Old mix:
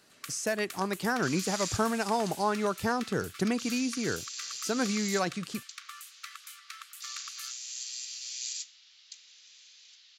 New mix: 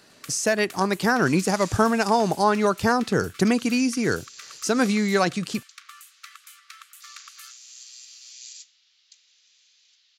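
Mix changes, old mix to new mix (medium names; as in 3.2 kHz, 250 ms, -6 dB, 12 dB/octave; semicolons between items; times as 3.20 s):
speech +8.5 dB; second sound -5.5 dB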